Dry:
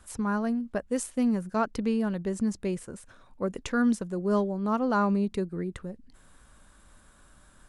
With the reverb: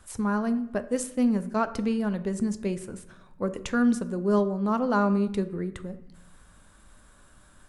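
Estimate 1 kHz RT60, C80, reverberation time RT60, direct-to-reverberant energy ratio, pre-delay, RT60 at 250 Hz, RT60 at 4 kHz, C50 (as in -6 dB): 0.75 s, 17.0 dB, 0.80 s, 10.0 dB, 8 ms, 1.2 s, 0.55 s, 14.5 dB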